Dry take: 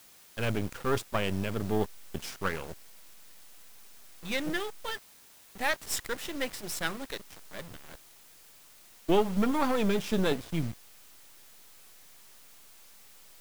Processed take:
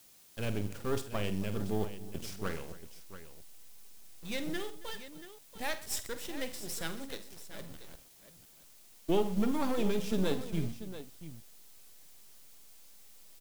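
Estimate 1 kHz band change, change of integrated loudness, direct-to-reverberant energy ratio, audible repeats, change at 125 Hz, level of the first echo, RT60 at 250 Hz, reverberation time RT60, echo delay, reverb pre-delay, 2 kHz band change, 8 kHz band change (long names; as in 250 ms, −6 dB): −7.5 dB, −4.5 dB, no reverb audible, 5, −2.5 dB, −12.0 dB, no reverb audible, no reverb audible, 48 ms, no reverb audible, −8.0 dB, −3.0 dB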